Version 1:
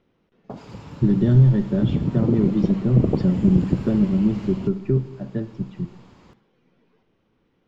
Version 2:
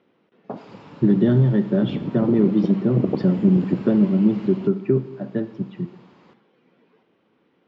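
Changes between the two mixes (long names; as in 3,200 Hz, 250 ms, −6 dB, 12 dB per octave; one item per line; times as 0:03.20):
speech +5.0 dB
master: add band-pass filter 210–4,100 Hz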